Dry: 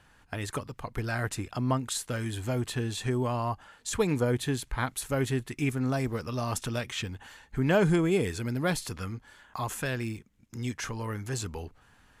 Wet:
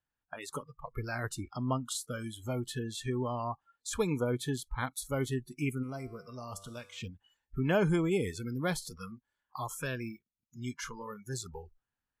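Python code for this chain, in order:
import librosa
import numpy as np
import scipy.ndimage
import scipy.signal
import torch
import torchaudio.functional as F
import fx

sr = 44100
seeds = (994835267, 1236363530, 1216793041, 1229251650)

y = fx.noise_reduce_blind(x, sr, reduce_db=27)
y = fx.comb_fb(y, sr, f0_hz=98.0, decay_s=1.2, harmonics='all', damping=0.0, mix_pct=60, at=(5.82, 7.0), fade=0.02)
y = y * 10.0 ** (-4.0 / 20.0)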